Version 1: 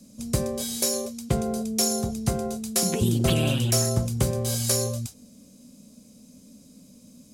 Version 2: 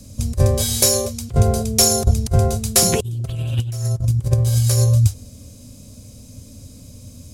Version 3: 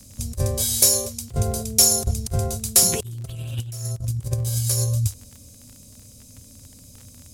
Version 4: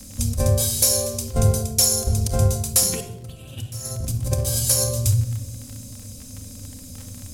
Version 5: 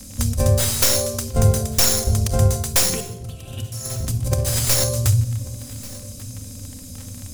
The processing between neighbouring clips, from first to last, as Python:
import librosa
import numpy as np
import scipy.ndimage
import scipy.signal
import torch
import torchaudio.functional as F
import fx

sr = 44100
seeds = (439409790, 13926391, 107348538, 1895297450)

y1 = fx.low_shelf_res(x, sr, hz=140.0, db=11.5, q=3.0)
y1 = fx.over_compress(y1, sr, threshold_db=-19.0, ratio=-0.5)
y1 = F.gain(torch.from_numpy(y1), 4.0).numpy()
y2 = fx.high_shelf(y1, sr, hz=4700.0, db=10.5)
y2 = fx.dmg_crackle(y2, sr, seeds[0], per_s=27.0, level_db=-25.0)
y2 = F.gain(torch.from_numpy(y2), -8.0).numpy()
y3 = fx.room_shoebox(y2, sr, seeds[1], volume_m3=2700.0, walls='furnished', distance_m=2.1)
y3 = fx.rider(y3, sr, range_db=5, speed_s=0.5)
y4 = fx.tracing_dist(y3, sr, depth_ms=0.093)
y4 = y4 + 10.0 ** (-20.0 / 20.0) * np.pad(y4, (int(1139 * sr / 1000.0), 0))[:len(y4)]
y4 = F.gain(torch.from_numpy(y4), 2.0).numpy()